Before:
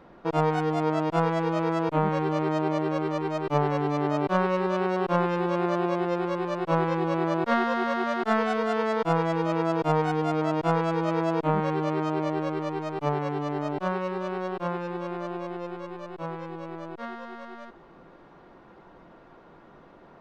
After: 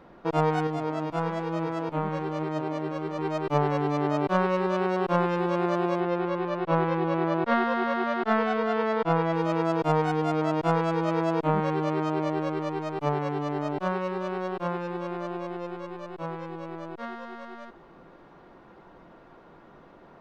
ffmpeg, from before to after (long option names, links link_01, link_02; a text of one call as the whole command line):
ffmpeg -i in.wav -filter_complex "[0:a]asettb=1/sr,asplit=3[link_01][link_02][link_03];[link_01]atrim=end=0.674[link_04];[link_02]atrim=start=0.67:end=3.19,asetpts=PTS-STARTPTS,afade=type=in:duration=0.004:curve=qsin,afade=type=out:start_time=2.516:duration=0.004:curve=qsin,flanger=delay=5.9:depth=7.9:regen=83:speed=1.1:shape=sinusoidal[link_05];[link_03]atrim=start=3.186[link_06];[link_04][link_05]acrossfade=duration=0.004:curve1=hsin:curve2=qsin[link_07];[link_07][link_06]acrossfade=duration=0.004:curve1=qsin:curve2=hsin,asettb=1/sr,asplit=3[link_08][link_09][link_10];[link_08]atrim=end=6.004[link_11];[link_09]atrim=start=6:end=9.33,asetpts=PTS-STARTPTS,afade=type=in:duration=0.004:curve=qsin,afade=type=out:start_time=3.326:duration=0.004:curve=qsin,lowpass=4000[link_12];[link_10]atrim=start=9.326[link_13];[link_11][link_12]acrossfade=duration=0.004:curve1=hsin:curve2=qsin[link_14];[link_14][link_13]acrossfade=duration=0.004:curve1=qsin:curve2=hsin" out.wav